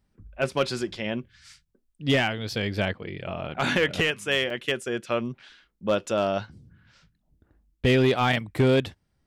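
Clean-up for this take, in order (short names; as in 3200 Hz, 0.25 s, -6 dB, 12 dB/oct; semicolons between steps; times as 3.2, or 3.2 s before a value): clip repair -14.5 dBFS; interpolate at 4.5, 2.8 ms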